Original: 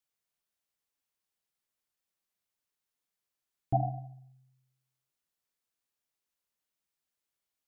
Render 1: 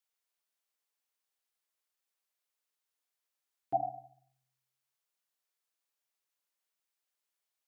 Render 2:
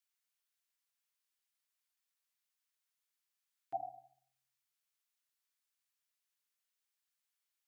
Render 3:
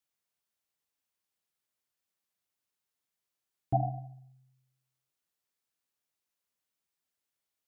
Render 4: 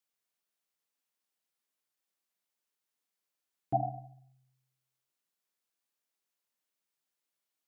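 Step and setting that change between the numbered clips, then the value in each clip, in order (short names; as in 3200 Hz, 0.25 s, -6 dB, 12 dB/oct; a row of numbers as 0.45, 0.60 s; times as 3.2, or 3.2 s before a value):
HPF, cutoff: 450, 1200, 46, 180 Hz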